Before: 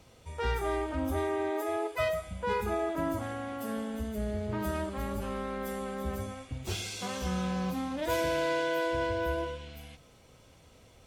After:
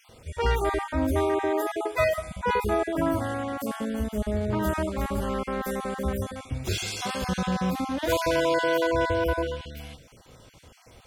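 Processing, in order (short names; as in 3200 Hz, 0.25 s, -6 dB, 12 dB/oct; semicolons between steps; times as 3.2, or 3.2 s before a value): random spectral dropouts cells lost 24%; gain +7 dB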